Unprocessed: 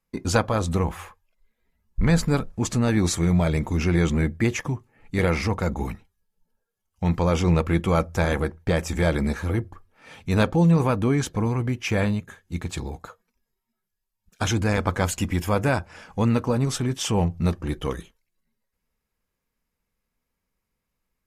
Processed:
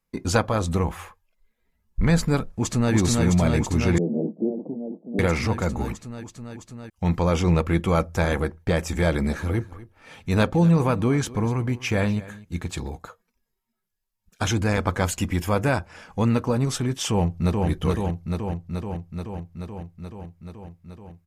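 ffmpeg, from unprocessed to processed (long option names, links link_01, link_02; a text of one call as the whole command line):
ffmpeg -i in.wav -filter_complex "[0:a]asplit=2[link_01][link_02];[link_02]afade=type=in:start_time=2.44:duration=0.01,afade=type=out:start_time=2.93:duration=0.01,aecho=0:1:330|660|990|1320|1650|1980|2310|2640|2970|3300|3630|3960:0.794328|0.675179|0.573902|0.487817|0.414644|0.352448|0.299581|0.254643|0.216447|0.18398|0.156383|0.132925[link_03];[link_01][link_03]amix=inputs=2:normalize=0,asettb=1/sr,asplit=3[link_04][link_05][link_06];[link_04]atrim=end=3.984[link_07];[link_05]atrim=start=3.98:end=5.19,asetpts=PTS-STARTPTS,afade=type=in:duration=0.004:curve=qsin,afade=type=out:start_time=1.206:duration=0.004:curve=qsin,asuperpass=centerf=350:order=12:qfactor=0.67[link_08];[link_06]atrim=start=5.186[link_09];[link_07][link_08]acrossfade=duration=0.004:curve1=hsin:curve2=qsin[link_10];[link_10][link_09]acrossfade=duration=0.004:curve1=qsin:curve2=hsin,asplit=3[link_11][link_12][link_13];[link_11]afade=type=out:start_time=9.29:duration=0.02[link_14];[link_12]aecho=1:1:246:0.119,afade=type=in:start_time=9.29:duration=0.02,afade=type=out:start_time=12.88:duration=0.02[link_15];[link_13]afade=type=in:start_time=12.88:duration=0.02[link_16];[link_14][link_15][link_16]amix=inputs=3:normalize=0,asplit=2[link_17][link_18];[link_18]afade=type=in:start_time=17.1:duration=0.01,afade=type=out:start_time=17.67:duration=0.01,aecho=0:1:430|860|1290|1720|2150|2580|3010|3440|3870|4300|4730|5160:0.749894|0.562421|0.421815|0.316362|0.237271|0.177953|0.133465|0.100099|0.0750741|0.0563056|0.0422292|0.0316719[link_19];[link_17][link_19]amix=inputs=2:normalize=0" out.wav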